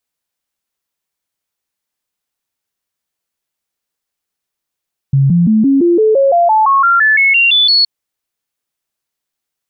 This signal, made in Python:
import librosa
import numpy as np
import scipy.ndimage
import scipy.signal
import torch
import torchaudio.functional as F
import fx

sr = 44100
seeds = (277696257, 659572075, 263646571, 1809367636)

y = fx.stepped_sweep(sr, from_hz=137.0, direction='up', per_octave=3, tones=16, dwell_s=0.17, gap_s=0.0, level_db=-6.5)